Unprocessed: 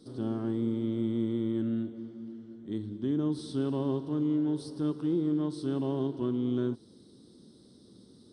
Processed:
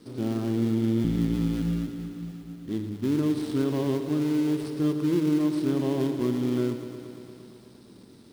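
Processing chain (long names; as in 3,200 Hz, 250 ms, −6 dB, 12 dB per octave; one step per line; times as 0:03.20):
gap after every zero crossing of 0.17 ms
0:01.04–0:02.69: frequency shifter −57 Hz
in parallel at −9 dB: floating-point word with a short mantissa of 2 bits
on the sum: feedback echo at a low word length 115 ms, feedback 80%, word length 10 bits, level −11 dB
level +1.5 dB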